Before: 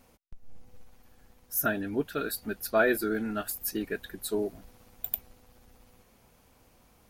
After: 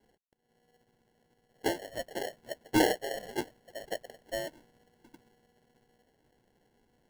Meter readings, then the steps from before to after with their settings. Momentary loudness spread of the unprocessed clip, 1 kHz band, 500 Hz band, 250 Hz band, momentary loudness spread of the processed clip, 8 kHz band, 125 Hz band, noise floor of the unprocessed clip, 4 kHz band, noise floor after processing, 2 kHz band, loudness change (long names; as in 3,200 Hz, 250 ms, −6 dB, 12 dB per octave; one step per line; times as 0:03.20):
10 LU, −1.0 dB, −4.0 dB, −2.5 dB, 16 LU, −5.5 dB, −3.5 dB, −62 dBFS, +3.0 dB, −74 dBFS, −6.0 dB, −3.5 dB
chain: single-sideband voice off tune +250 Hz 470–2,300 Hz
low-pass that shuts in the quiet parts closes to 1,100 Hz, open at −33 dBFS
decimation without filtering 36×